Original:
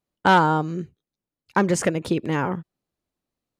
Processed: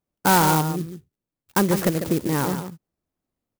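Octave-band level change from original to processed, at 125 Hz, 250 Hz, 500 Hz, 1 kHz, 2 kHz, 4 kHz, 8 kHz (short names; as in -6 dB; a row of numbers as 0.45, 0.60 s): +2.0, +1.5, -0.5, -1.5, -2.5, +2.5, +6.0 dB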